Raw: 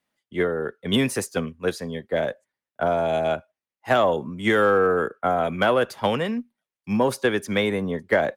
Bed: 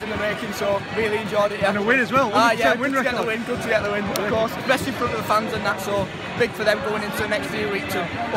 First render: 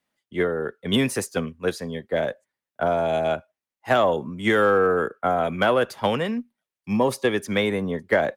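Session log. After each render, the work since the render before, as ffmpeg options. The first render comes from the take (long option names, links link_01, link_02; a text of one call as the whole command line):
ffmpeg -i in.wav -filter_complex "[0:a]asettb=1/sr,asplit=3[link_01][link_02][link_03];[link_01]atrim=end=6.914[link_04];[link_02]atrim=start=6.91:end=7.37,asetpts=PTS-STARTPTS,afade=type=in:duration=0.004:curve=qsin,afade=type=out:start_time=0.456:duration=0.004:curve=qsin,asuperstop=centerf=1500:order=4:qfactor=5.5[link_05];[link_03]atrim=start=7.366[link_06];[link_04][link_05]acrossfade=duration=0.004:curve1=hsin:curve2=qsin[link_07];[link_07][link_06]acrossfade=duration=0.004:curve1=qsin:curve2=hsin" out.wav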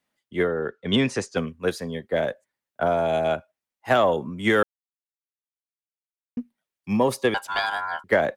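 ffmpeg -i in.wav -filter_complex "[0:a]asettb=1/sr,asplit=3[link_01][link_02][link_03];[link_01]atrim=end=0.474[link_04];[link_02]atrim=start=0.47:end=1.37,asetpts=PTS-STARTPTS,afade=type=in:duration=0.004:curve=qsin,afade=type=out:start_time=0.896:duration=0.004:curve=qsin,lowpass=frequency=7000:width=0.5412,lowpass=frequency=7000:width=1.3066[link_05];[link_03]atrim=start=1.366[link_06];[link_04][link_05]acrossfade=duration=0.004:curve1=hsin:curve2=qsin[link_07];[link_07][link_06]acrossfade=duration=0.004:curve1=qsin:curve2=hsin,asettb=1/sr,asplit=3[link_08][link_09][link_10];[link_08]atrim=end=7.344[link_11];[link_09]atrim=start=7.34:end=8.04,asetpts=PTS-STARTPTS,afade=type=in:duration=0.004:curve=qsin,afade=type=out:start_time=0.696:duration=0.004:curve=qsin,aeval=exprs='val(0)*sin(2*PI*1200*n/s)':channel_layout=same[link_12];[link_10]atrim=start=8.036[link_13];[link_11][link_12]acrossfade=duration=0.004:curve1=hsin:curve2=qsin[link_14];[link_14][link_13]acrossfade=duration=0.004:curve1=qsin:curve2=hsin,asplit=3[link_15][link_16][link_17];[link_15]atrim=end=4.63,asetpts=PTS-STARTPTS,afade=type=out:start_time=4.626:duration=0.004:curve=hsin[link_18];[link_16]atrim=start=4.63:end=6.37,asetpts=PTS-STARTPTS,volume=0[link_19];[link_17]atrim=start=6.37,asetpts=PTS-STARTPTS,afade=type=in:duration=0.004:curve=hsin[link_20];[link_18][link_19][link_20]concat=n=3:v=0:a=1" out.wav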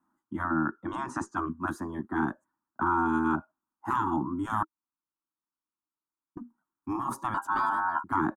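ffmpeg -i in.wav -af "afftfilt=real='re*lt(hypot(re,im),0.158)':imag='im*lt(hypot(re,im),0.158)':win_size=1024:overlap=0.75,firequalizer=gain_entry='entry(120,0);entry(320,14);entry(460,-17);entry(930,11);entry(1400,7);entry(2100,-20);entry(4500,-21);entry(6600,-9)':delay=0.05:min_phase=1" out.wav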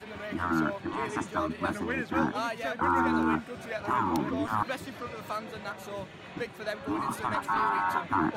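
ffmpeg -i in.wav -i bed.wav -filter_complex "[1:a]volume=-15.5dB[link_01];[0:a][link_01]amix=inputs=2:normalize=0" out.wav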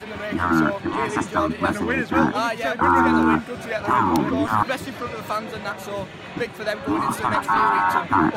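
ffmpeg -i in.wav -af "volume=9dB" out.wav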